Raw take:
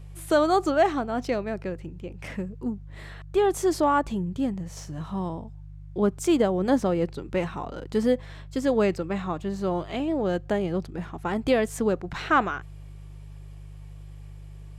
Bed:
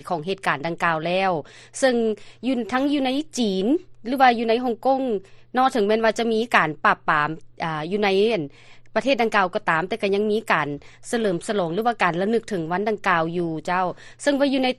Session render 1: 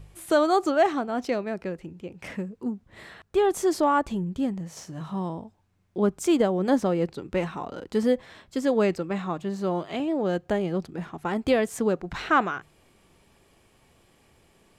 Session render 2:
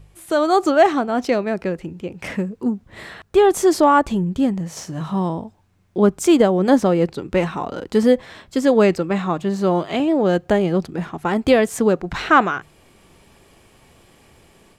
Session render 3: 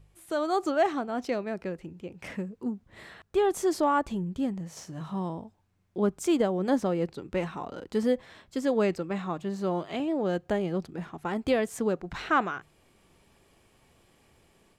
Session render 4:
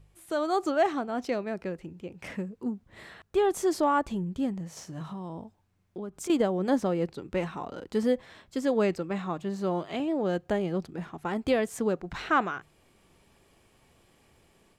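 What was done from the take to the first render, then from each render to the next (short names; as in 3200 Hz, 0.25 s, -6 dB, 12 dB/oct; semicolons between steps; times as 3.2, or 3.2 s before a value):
de-hum 50 Hz, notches 3
AGC gain up to 9 dB
gain -11 dB
5.02–6.3 compressor, threshold -34 dBFS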